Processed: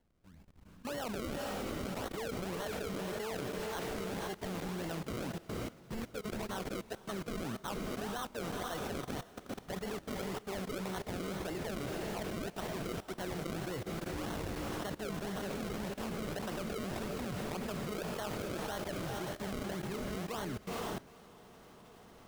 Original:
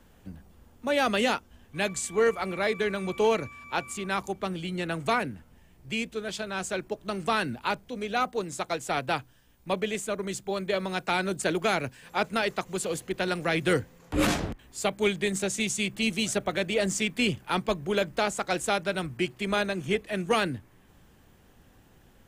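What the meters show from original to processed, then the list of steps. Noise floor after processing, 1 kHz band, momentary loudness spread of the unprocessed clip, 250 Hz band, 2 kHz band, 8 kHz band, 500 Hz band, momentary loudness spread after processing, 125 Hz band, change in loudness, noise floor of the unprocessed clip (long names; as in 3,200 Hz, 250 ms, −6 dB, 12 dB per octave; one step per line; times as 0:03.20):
−57 dBFS, −11.5 dB, 7 LU, −8.0 dB, −14.0 dB, −12.0 dB, −11.0 dB, 4 LU, −5.5 dB, −11.0 dB, −58 dBFS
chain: sample-and-hold swept by an LFO 35×, swing 100% 1.8 Hz
feedback delay with all-pass diffusion 467 ms, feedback 56%, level −8 dB
output level in coarse steps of 18 dB
level −2.5 dB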